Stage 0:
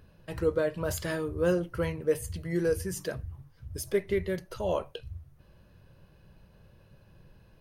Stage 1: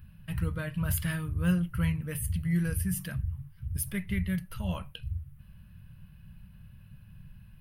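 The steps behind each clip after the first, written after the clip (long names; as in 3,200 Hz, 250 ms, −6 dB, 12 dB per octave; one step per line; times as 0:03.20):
drawn EQ curve 190 Hz 0 dB, 400 Hz −27 dB, 1,300 Hz −9 dB, 2,900 Hz −4 dB, 4,000 Hz −12 dB, 6,900 Hz −17 dB, 10,000 Hz 0 dB
level +7 dB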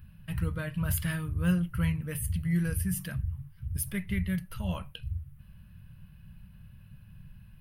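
no processing that can be heard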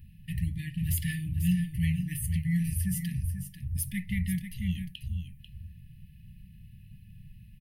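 linear-phase brick-wall band-stop 300–1,700 Hz
single-tap delay 492 ms −9.5 dB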